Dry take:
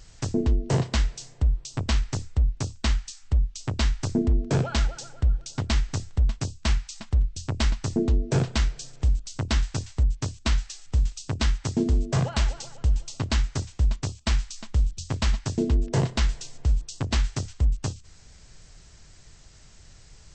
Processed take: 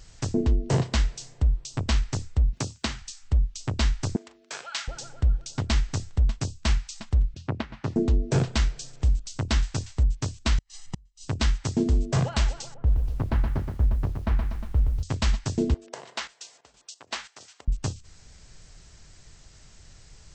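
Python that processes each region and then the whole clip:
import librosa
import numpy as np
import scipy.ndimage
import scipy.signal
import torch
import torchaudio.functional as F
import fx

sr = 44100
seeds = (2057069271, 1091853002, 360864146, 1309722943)

y = fx.chain(x, sr, fx.highpass(hz=120.0, slope=12),
    fx.band_squash(depth_pct=70), at=(2.53, 3.02))
y = fx.chain(y, sr, fx.highpass(hz=1400.0, slope=12),
    fx.doubler(ms=41.0, db=-13.5), at=(4.16, 4.88))
y = fx.chain(y, sr, fx.over_compress(threshold_db=-24.0, ratio=-0.5),
    fx.bandpass_edges(low_hz=120.0, high_hz=2300.0), at=(7.34, 7.96))
y = fx.chain(y, sr, fx.comb(ms=1.0, depth=0.55),
    fx.gate_flip(shuts_db=-19.0, range_db=-37), at=(10.58, 11.26))
y = fx.chain(y, sr, fx.lowpass(hz=1300.0, slope=12),
    fx.echo_crushed(ms=121, feedback_pct=55, bits=9, wet_db=-5.5), at=(12.74, 15.03))
y = fx.chain(y, sr, fx.highpass(hz=660.0, slope=12),
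    fx.high_shelf(hz=3700.0, db=-4.5),
    fx.chopper(hz=3.0, depth_pct=65, duty_pct=60), at=(15.74, 17.68))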